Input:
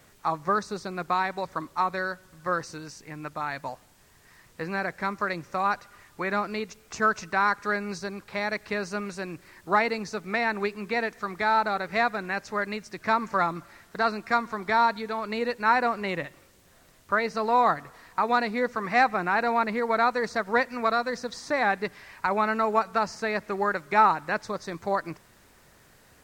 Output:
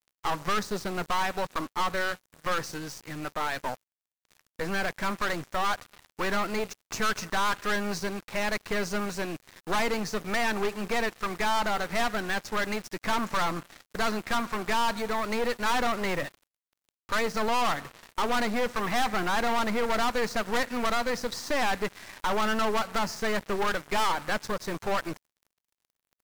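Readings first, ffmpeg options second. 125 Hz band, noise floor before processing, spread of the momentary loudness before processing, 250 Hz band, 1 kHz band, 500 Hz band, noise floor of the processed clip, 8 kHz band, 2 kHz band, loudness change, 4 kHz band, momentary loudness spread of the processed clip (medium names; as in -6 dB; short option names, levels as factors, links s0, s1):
+0.5 dB, -58 dBFS, 12 LU, 0.0 dB, -4.0 dB, -2.0 dB, under -85 dBFS, +8.0 dB, -2.0 dB, -2.5 dB, +5.5 dB, 7 LU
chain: -af "aeval=exprs='(tanh(44.7*val(0)+0.8)-tanh(0.8))/44.7':c=same,acrusher=bits=7:mix=0:aa=0.5,volume=2.51"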